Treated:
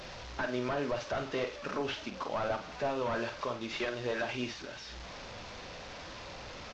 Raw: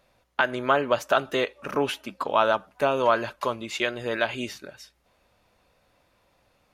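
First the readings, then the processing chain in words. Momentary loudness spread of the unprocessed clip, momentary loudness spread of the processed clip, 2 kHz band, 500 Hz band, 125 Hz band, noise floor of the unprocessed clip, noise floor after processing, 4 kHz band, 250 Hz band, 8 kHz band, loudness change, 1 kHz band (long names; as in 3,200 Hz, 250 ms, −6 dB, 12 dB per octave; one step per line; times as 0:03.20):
10 LU, 11 LU, −10.0 dB, −9.5 dB, −3.0 dB, −67 dBFS, −46 dBFS, −7.5 dB, −5.5 dB, −6.5 dB, −11.0 dB, −11.5 dB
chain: linear delta modulator 32 kbit/s, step −35.5 dBFS
brickwall limiter −20 dBFS, peak gain reduction 7 dB
flanger 0.46 Hz, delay 0.1 ms, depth 9.1 ms, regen −73%
double-tracking delay 48 ms −8.5 dB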